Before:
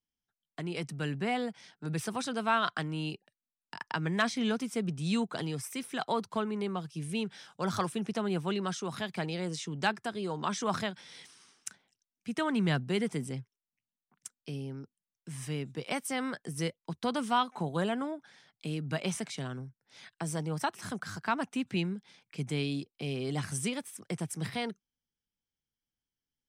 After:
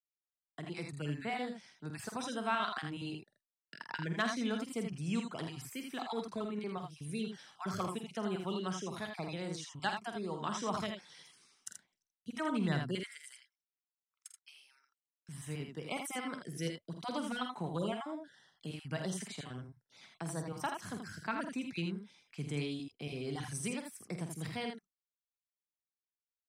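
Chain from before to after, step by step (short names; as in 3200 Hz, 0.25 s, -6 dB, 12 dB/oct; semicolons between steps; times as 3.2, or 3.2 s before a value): random spectral dropouts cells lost 23%; gate with hold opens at -58 dBFS; 12.95–15.29 HPF 1300 Hz 24 dB/oct; tapped delay 48/80/81/84 ms -9/-19.5/-6/-17.5 dB; gain -5.5 dB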